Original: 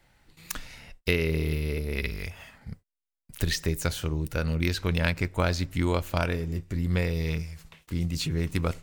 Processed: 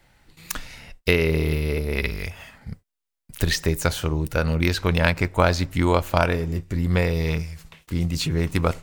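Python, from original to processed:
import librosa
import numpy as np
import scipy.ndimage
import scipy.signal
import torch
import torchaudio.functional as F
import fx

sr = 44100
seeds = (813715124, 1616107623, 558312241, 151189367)

y = fx.dynamic_eq(x, sr, hz=850.0, q=0.84, threshold_db=-43.0, ratio=4.0, max_db=6)
y = F.gain(torch.from_numpy(y), 4.5).numpy()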